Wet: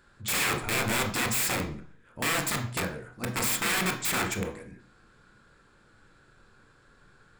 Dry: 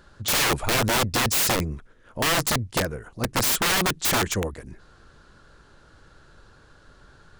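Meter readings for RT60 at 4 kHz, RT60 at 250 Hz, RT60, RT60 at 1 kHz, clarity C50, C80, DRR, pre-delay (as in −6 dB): 0.45 s, 0.55 s, 0.50 s, 0.50 s, 9.5 dB, 13.5 dB, 3.5 dB, 18 ms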